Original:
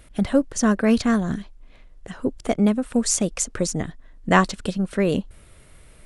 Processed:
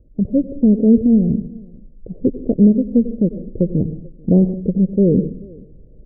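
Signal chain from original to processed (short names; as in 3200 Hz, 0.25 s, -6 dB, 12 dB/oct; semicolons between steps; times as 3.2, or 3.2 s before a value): steep low-pass 530 Hz 48 dB/oct; outdoor echo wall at 75 m, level -23 dB; dynamic EQ 160 Hz, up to +4 dB, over -33 dBFS, Q 0.85; reverb RT60 0.45 s, pre-delay 86 ms, DRR 10.5 dB; AGC gain up to 6.5 dB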